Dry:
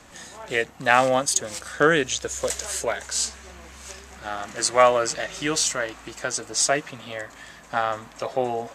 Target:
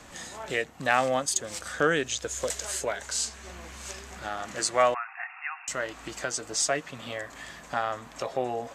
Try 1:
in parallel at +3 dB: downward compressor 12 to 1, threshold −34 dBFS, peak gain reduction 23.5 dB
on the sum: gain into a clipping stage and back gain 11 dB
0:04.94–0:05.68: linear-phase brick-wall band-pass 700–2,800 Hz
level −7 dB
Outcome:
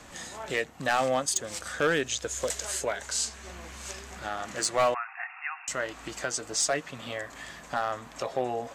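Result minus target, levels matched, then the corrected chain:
gain into a clipping stage and back: distortion +30 dB
in parallel at +3 dB: downward compressor 12 to 1, threshold −34 dBFS, peak gain reduction 23.5 dB
on the sum: gain into a clipping stage and back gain 1.5 dB
0:04.94–0:05.68: linear-phase brick-wall band-pass 700–2,800 Hz
level −7 dB

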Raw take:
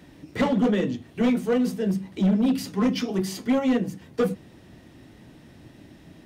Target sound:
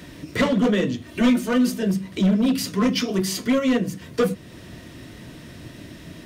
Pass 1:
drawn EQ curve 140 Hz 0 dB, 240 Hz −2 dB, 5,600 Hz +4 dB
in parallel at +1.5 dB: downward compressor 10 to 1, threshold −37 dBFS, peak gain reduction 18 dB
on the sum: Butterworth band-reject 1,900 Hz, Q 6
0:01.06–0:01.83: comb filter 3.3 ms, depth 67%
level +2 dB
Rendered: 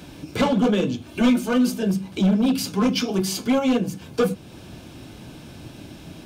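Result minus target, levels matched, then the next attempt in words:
2,000 Hz band −2.5 dB
drawn EQ curve 140 Hz 0 dB, 240 Hz −2 dB, 5,600 Hz +4 dB
in parallel at +1.5 dB: downward compressor 10 to 1, threshold −37 dBFS, peak gain reduction 18 dB
on the sum: Butterworth band-reject 810 Hz, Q 6
0:01.06–0:01.83: comb filter 3.3 ms, depth 67%
level +2 dB

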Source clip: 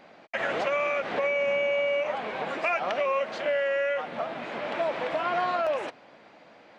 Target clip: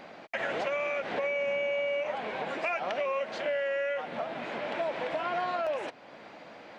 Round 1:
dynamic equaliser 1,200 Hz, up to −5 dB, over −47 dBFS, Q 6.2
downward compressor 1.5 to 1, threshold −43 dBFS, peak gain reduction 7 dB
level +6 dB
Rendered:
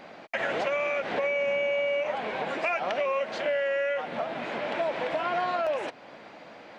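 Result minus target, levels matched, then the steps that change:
downward compressor: peak gain reduction −3 dB
change: downward compressor 1.5 to 1, threshold −52.5 dBFS, peak gain reduction 10.5 dB

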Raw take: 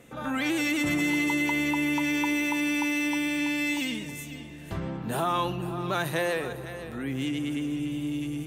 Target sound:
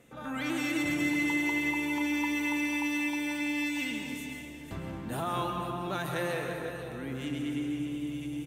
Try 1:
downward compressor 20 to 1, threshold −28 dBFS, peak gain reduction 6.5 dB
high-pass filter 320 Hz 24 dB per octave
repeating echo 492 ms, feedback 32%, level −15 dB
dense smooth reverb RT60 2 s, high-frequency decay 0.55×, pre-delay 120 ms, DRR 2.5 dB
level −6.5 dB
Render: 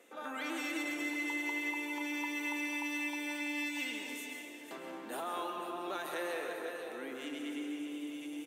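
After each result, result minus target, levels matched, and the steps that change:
downward compressor: peak gain reduction +6.5 dB; 250 Hz band −2.5 dB
remove: downward compressor 20 to 1, threshold −28 dBFS, peak gain reduction 6.5 dB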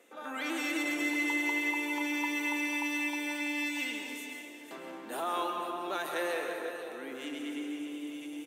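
250 Hz band −3.5 dB
remove: high-pass filter 320 Hz 24 dB per octave

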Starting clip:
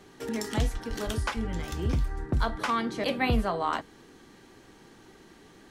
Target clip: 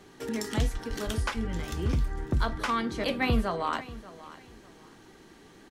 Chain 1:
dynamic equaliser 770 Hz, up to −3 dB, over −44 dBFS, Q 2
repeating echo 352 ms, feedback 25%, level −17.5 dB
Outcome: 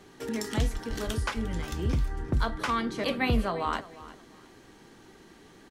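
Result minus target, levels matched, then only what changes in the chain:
echo 236 ms early
change: repeating echo 588 ms, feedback 25%, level −17.5 dB

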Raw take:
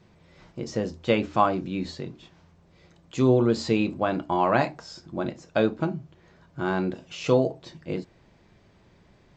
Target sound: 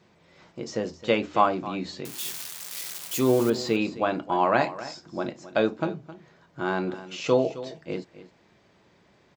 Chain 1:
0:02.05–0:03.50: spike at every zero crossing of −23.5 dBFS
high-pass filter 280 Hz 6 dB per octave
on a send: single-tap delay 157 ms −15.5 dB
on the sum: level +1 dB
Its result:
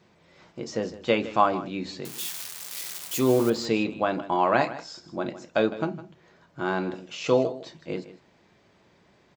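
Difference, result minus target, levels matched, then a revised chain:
echo 107 ms early
0:02.05–0:03.50: spike at every zero crossing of −23.5 dBFS
high-pass filter 280 Hz 6 dB per octave
on a send: single-tap delay 264 ms −15.5 dB
on the sum: level +1 dB

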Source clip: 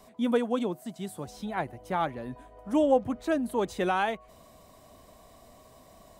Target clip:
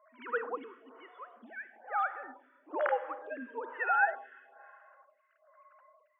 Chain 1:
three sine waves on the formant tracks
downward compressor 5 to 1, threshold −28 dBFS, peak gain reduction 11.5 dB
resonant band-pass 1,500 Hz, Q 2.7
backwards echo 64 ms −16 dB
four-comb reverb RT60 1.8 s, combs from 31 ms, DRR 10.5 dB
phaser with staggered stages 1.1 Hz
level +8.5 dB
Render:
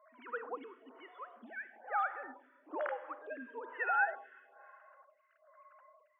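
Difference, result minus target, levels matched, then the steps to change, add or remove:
downward compressor: peak gain reduction +11.5 dB
remove: downward compressor 5 to 1, threshold −28 dBFS, peak gain reduction 11.5 dB

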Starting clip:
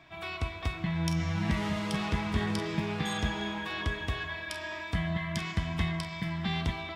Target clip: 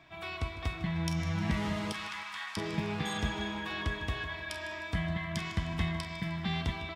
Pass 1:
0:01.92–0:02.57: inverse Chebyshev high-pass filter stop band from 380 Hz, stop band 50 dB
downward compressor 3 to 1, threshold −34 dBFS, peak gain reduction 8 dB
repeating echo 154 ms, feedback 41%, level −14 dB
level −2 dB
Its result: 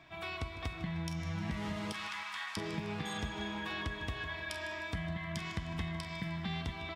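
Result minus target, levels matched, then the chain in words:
downward compressor: peak gain reduction +8 dB
0:01.92–0:02.57: inverse Chebyshev high-pass filter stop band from 380 Hz, stop band 50 dB
repeating echo 154 ms, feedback 41%, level −14 dB
level −2 dB

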